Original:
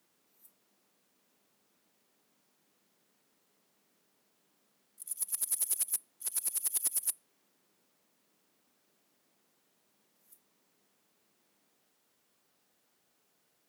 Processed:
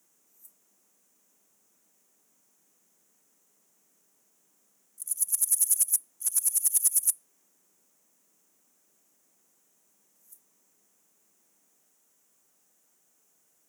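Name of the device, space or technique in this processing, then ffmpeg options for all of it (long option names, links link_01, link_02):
budget condenser microphone: -af "highpass=110,highshelf=frequency=5400:width_type=q:width=3:gain=6.5"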